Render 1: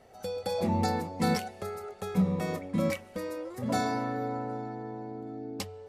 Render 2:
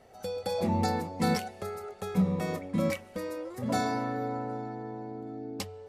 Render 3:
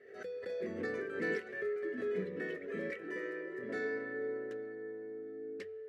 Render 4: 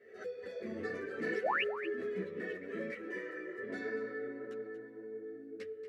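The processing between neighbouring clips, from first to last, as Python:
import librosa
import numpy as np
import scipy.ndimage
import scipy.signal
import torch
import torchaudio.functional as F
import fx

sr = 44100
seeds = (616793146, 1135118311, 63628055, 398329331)

y1 = x
y2 = fx.echo_pitch(y1, sr, ms=314, semitones=5, count=2, db_per_echo=-6.0)
y2 = fx.double_bandpass(y2, sr, hz=860.0, octaves=2.1)
y2 = fx.pre_swell(y2, sr, db_per_s=74.0)
y2 = y2 * librosa.db_to_amplitude(3.0)
y3 = fx.spec_paint(y2, sr, seeds[0], shape='rise', start_s=1.42, length_s=0.21, low_hz=420.0, high_hz=3100.0, level_db=-31.0)
y3 = y3 + 10.0 ** (-12.0 / 20.0) * np.pad(y3, (int(234 * sr / 1000.0), 0))[:len(y3)]
y3 = fx.ensemble(y3, sr)
y3 = y3 * librosa.db_to_amplitude(2.0)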